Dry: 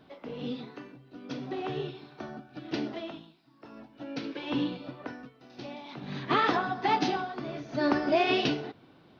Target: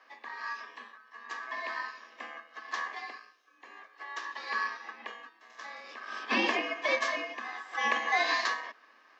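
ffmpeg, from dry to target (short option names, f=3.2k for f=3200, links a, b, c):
-af "aeval=exprs='val(0)*sin(2*PI*1200*n/s)':c=same,afreqshift=210"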